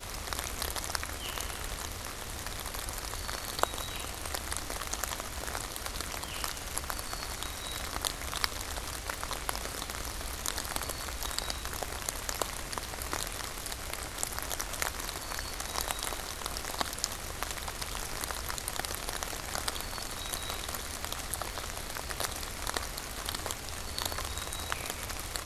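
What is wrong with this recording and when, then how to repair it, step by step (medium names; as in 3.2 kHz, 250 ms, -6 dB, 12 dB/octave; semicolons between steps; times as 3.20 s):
crackle 29 per s -42 dBFS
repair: de-click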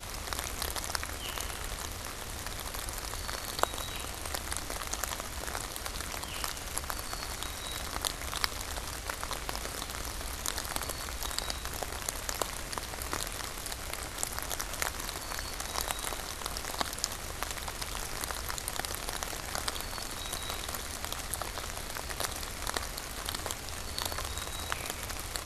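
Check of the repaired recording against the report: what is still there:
nothing left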